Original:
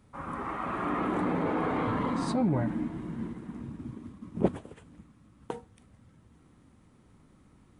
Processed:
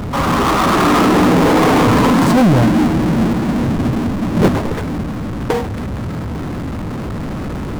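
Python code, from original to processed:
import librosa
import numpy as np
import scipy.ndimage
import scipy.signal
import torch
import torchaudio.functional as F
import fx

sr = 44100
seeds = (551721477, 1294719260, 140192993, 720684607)

p1 = fx.wiener(x, sr, points=15)
p2 = fx.backlash(p1, sr, play_db=-31.5)
p3 = p1 + (p2 * librosa.db_to_amplitude(-6.0))
p4 = fx.power_curve(p3, sr, exponent=0.35)
y = p4 * librosa.db_to_amplitude(4.0)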